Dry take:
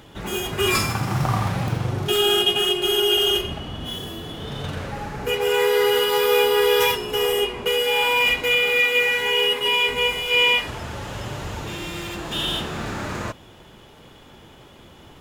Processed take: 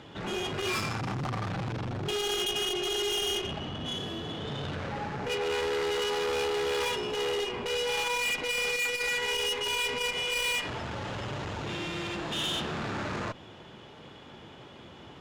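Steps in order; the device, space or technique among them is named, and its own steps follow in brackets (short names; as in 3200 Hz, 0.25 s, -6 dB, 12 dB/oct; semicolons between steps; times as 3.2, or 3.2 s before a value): valve radio (BPF 88–5100 Hz; tube stage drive 27 dB, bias 0.35; core saturation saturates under 210 Hz)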